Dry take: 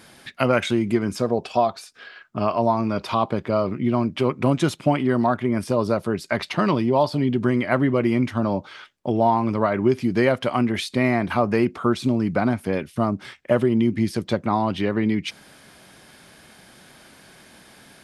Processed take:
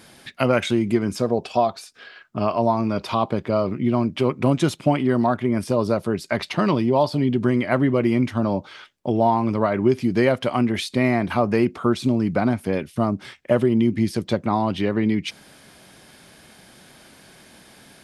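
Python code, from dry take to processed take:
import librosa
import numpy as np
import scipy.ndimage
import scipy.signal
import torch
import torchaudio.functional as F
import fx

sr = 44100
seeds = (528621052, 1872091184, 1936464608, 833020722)

y = fx.peak_eq(x, sr, hz=1400.0, db=-2.5, octaves=1.4)
y = y * 10.0 ** (1.0 / 20.0)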